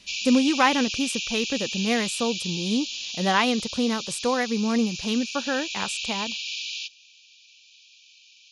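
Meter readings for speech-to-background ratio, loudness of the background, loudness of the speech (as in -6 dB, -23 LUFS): 4.5 dB, -30.0 LUFS, -25.5 LUFS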